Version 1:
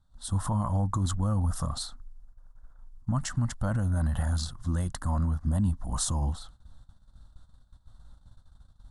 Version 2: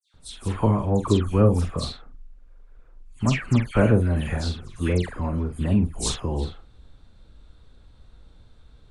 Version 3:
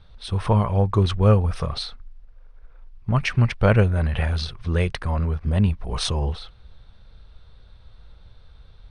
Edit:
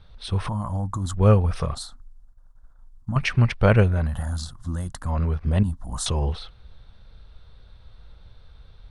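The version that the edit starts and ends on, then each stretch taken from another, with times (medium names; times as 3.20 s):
3
0.49–1.17 s: from 1
1.75–3.16 s: from 1
4.04–5.10 s: from 1, crossfade 0.24 s
5.63–6.06 s: from 1
not used: 2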